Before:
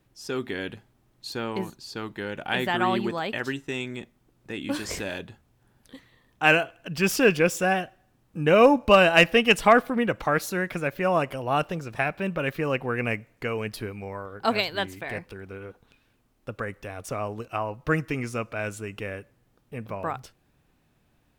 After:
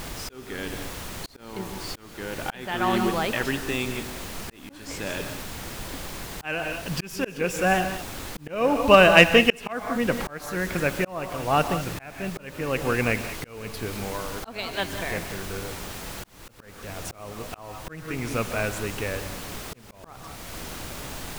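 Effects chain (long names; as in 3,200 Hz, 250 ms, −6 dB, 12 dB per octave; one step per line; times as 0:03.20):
background noise pink −39 dBFS
reverb whose tail is shaped and stops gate 220 ms rising, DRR 9.5 dB
volume swells 531 ms
level +3 dB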